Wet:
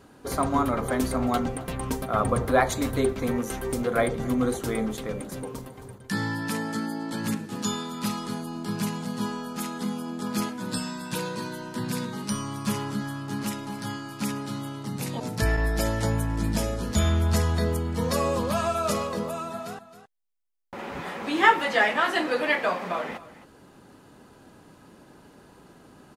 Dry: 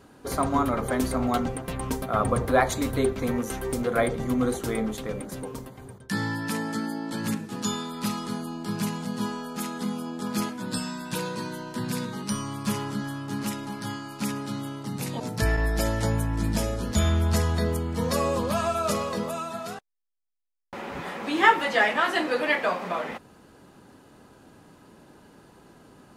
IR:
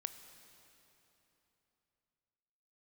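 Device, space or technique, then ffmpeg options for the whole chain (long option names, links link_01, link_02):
ducked delay: -filter_complex "[0:a]asettb=1/sr,asplit=3[link_01][link_02][link_03];[link_01]atrim=end=19.074[link_04];[link_02]atrim=start=19.07:end=20.79,asetpts=PTS-STARTPTS,afade=type=in:duration=0.004:curve=qsin,afade=type=out:start_time=1.716:duration=0.004:curve=qsin,equalizer=frequency=4900:width=0.36:gain=-3.5[link_05];[link_03]atrim=start=20.786[link_06];[link_04][link_05]acrossfade=duration=0.004:curve1=hsin:curve2=qsin[link_07];[link_07][link_06]acrossfade=duration=0.004:curve1=qsin:curve2=hsin,asplit=3[link_08][link_09][link_10];[link_09]adelay=268,volume=-7.5dB[link_11];[link_10]apad=whole_len=1165535[link_12];[link_11][link_12]sidechaincompress=threshold=-42dB:ratio=3:attack=16:release=838[link_13];[link_08][link_13]amix=inputs=2:normalize=0"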